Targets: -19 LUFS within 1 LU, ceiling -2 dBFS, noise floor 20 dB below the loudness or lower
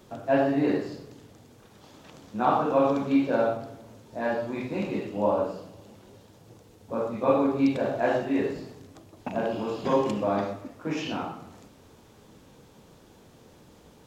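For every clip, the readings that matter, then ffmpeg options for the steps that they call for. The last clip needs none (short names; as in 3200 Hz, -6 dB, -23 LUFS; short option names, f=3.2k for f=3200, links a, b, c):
loudness -27.0 LUFS; peak -9.0 dBFS; loudness target -19.0 LUFS
-> -af "volume=8dB,alimiter=limit=-2dB:level=0:latency=1"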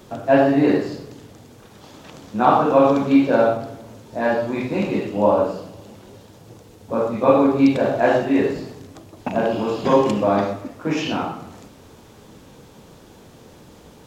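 loudness -19.0 LUFS; peak -2.0 dBFS; noise floor -47 dBFS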